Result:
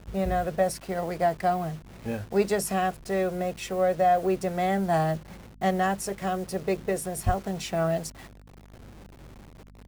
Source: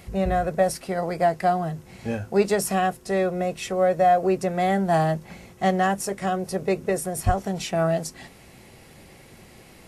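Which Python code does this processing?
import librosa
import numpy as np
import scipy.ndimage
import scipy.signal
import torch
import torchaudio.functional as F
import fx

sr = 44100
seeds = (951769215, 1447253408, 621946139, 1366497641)

y = fx.delta_hold(x, sr, step_db=-39.5)
y = fx.add_hum(y, sr, base_hz=50, snr_db=23)
y = F.gain(torch.from_numpy(y), -3.5).numpy()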